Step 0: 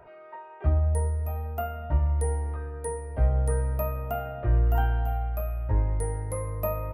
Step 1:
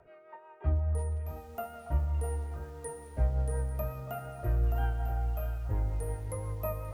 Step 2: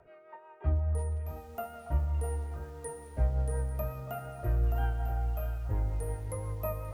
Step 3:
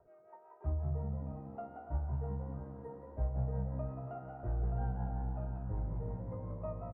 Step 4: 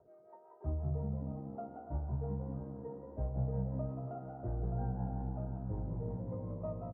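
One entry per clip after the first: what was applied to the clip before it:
rotary cabinet horn 5.5 Hz; repeats whose band climbs or falls 282 ms, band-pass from 990 Hz, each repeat 1.4 oct, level -7 dB; bit-crushed delay 652 ms, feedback 35%, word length 8-bit, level -11 dB; trim -4.5 dB
no audible change
Chebyshev low-pass 920 Hz, order 2; frequency-shifting echo 180 ms, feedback 43%, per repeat +66 Hz, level -7 dB; trim -6 dB
band-pass filter 260 Hz, Q 0.54; trim +4 dB

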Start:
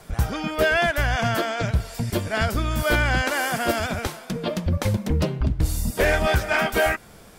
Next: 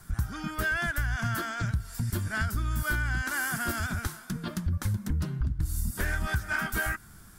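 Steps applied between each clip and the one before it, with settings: FFT filter 100 Hz 0 dB, 350 Hz -9 dB, 500 Hz -22 dB, 1.5 kHz -1 dB, 2.4 kHz -13 dB, 10 kHz 0 dB; compression, threshold -25 dBFS, peak gain reduction 9 dB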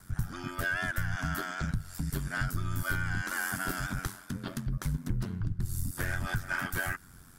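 ring modulator 45 Hz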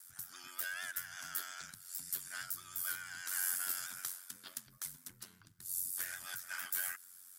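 differentiator; vibrato 8.8 Hz 34 cents; trim +2 dB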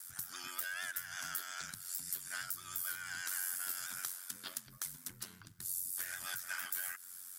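compression 3:1, threshold -45 dBFS, peak gain reduction 10.5 dB; trim +6.5 dB

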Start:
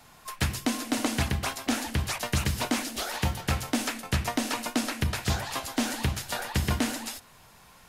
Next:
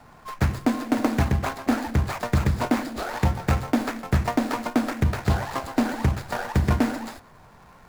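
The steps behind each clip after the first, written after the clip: median filter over 15 samples; trim +6.5 dB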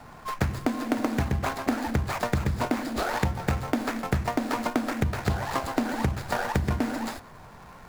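compression, threshold -26 dBFS, peak gain reduction 10.5 dB; trim +3.5 dB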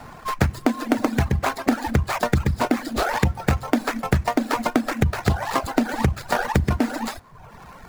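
reverb removal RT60 0.91 s; trim +6.5 dB

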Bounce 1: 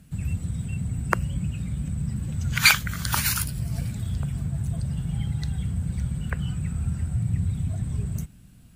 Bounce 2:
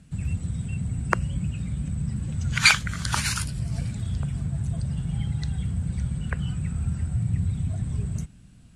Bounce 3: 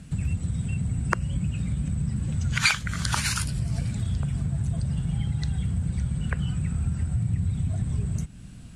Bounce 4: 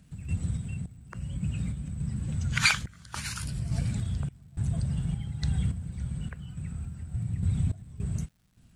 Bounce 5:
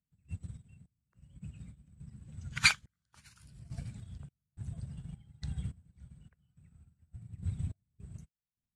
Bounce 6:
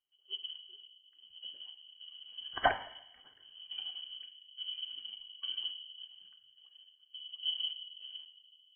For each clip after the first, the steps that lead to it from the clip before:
low-pass 9.3 kHz 24 dB/octave
compression 2:1, threshold -37 dBFS, peak gain reduction 14 dB; trim +8 dB
random-step tremolo, depth 95%; crackle 300 per s -59 dBFS
upward expansion 2.5:1, over -42 dBFS
reverberation RT60 0.90 s, pre-delay 3 ms, DRR 6 dB; frequency inversion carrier 3.1 kHz; trim -2.5 dB

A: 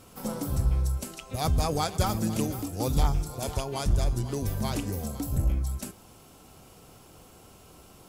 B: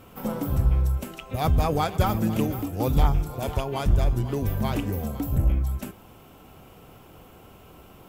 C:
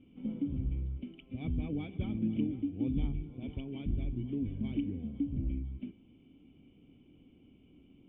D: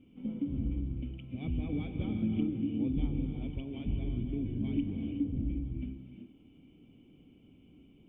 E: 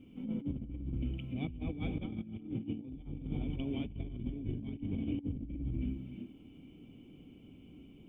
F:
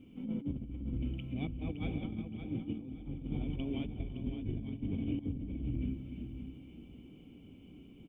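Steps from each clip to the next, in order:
high-order bell 6.7 kHz -11 dB; trim +4 dB
cascade formant filter i; trim -1 dB
gated-style reverb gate 400 ms rising, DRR 4 dB
compressor with a negative ratio -37 dBFS, ratio -0.5
feedback delay 566 ms, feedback 26%, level -9 dB

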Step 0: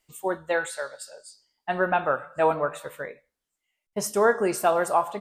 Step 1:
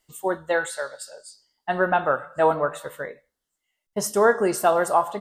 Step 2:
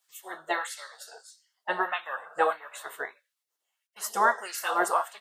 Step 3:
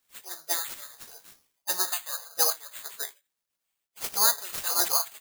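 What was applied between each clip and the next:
band-stop 2.4 kHz, Q 5.1; trim +2.5 dB
LFO high-pass sine 1.6 Hz 490–2300 Hz; spectral gate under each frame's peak -10 dB weak
careless resampling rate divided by 8×, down none, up zero stuff; trim -8.5 dB

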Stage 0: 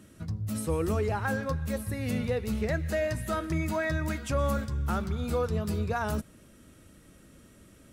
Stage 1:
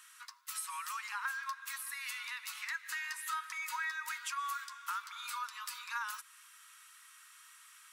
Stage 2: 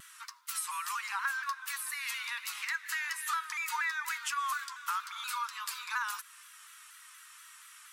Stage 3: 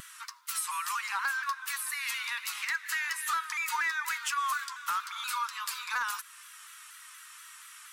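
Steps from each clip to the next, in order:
steep high-pass 960 Hz 96 dB/octave; compression 2:1, threshold -46 dBFS, peak gain reduction 9.5 dB; trim +5 dB
vibrato with a chosen wave saw down 4.2 Hz, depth 100 cents; trim +4.5 dB
upward compressor, threshold -49 dBFS; hard clipper -27.5 dBFS, distortion -21 dB; trim +3 dB

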